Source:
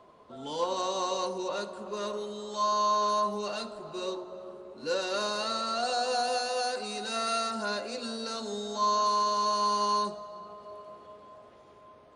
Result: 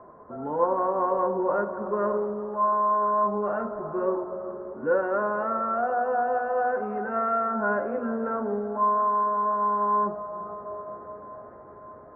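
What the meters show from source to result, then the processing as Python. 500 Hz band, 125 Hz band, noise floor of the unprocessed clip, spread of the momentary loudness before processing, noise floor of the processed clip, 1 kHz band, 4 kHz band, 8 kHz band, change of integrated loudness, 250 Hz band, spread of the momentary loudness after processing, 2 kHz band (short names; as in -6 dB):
+6.5 dB, n/a, -55 dBFS, 18 LU, -46 dBFS, +4.5 dB, under -40 dB, under -40 dB, +4.0 dB, +7.0 dB, 14 LU, +4.5 dB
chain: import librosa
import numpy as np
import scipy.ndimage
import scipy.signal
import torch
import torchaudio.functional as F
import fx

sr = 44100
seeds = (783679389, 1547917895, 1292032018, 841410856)

y = fx.rider(x, sr, range_db=3, speed_s=0.5)
y = scipy.signal.sosfilt(scipy.signal.butter(8, 1700.0, 'lowpass', fs=sr, output='sos'), y)
y = y * 10.0 ** (6.0 / 20.0)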